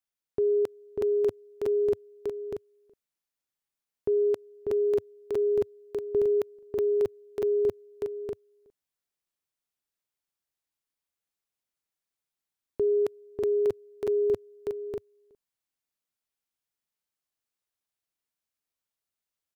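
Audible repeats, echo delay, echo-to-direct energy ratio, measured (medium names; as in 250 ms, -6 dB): 2, 593 ms, -2.0 dB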